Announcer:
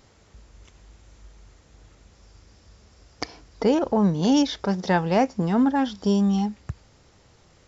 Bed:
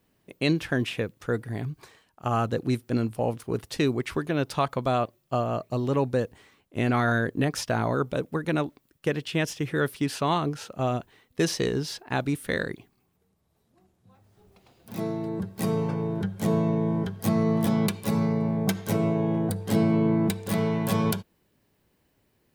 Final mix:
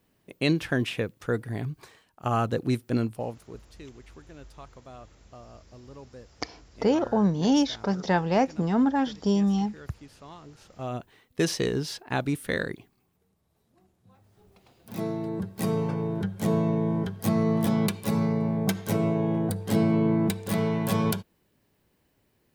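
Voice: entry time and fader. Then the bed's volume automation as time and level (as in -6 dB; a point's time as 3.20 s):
3.20 s, -2.5 dB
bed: 3.02 s 0 dB
3.79 s -21.5 dB
10.42 s -21.5 dB
11.09 s -0.5 dB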